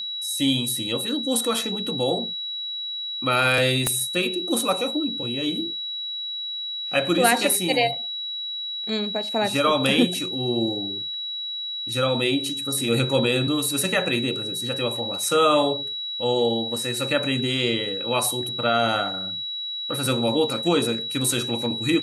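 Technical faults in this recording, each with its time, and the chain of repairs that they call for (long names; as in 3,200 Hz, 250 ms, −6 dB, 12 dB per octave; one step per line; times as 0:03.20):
whistle 3,900 Hz −28 dBFS
0:03.87: click −7 dBFS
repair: click removal
notch filter 3,900 Hz, Q 30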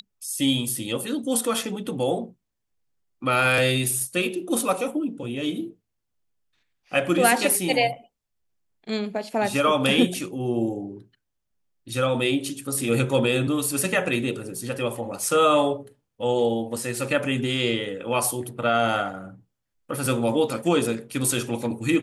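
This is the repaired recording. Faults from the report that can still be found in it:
0:03.87: click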